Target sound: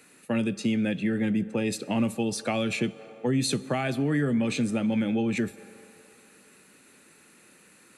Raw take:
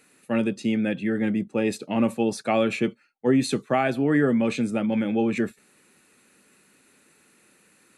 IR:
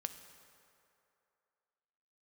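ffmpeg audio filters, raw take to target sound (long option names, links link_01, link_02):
-filter_complex "[0:a]asplit=2[link_01][link_02];[1:a]atrim=start_sample=2205[link_03];[link_02][link_03]afir=irnorm=-1:irlink=0,volume=-4.5dB[link_04];[link_01][link_04]amix=inputs=2:normalize=0,acrossover=split=170|3000[link_05][link_06][link_07];[link_06]acompressor=threshold=-27dB:ratio=6[link_08];[link_05][link_08][link_07]amix=inputs=3:normalize=0"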